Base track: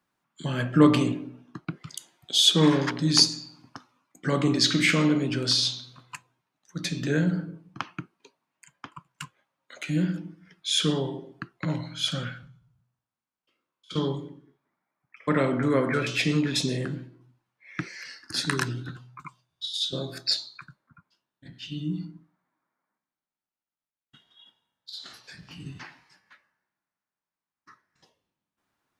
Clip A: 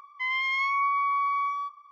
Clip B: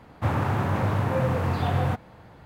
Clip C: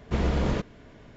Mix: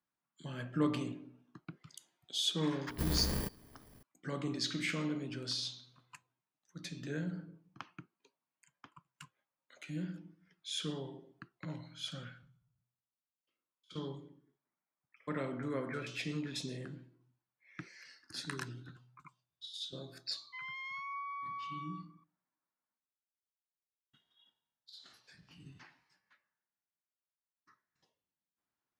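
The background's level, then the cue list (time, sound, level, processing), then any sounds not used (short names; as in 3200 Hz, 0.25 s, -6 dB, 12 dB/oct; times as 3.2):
base track -14.5 dB
2.87 add C -10 dB + FFT order left unsorted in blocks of 32 samples
20.33 add A -16.5 dB
not used: B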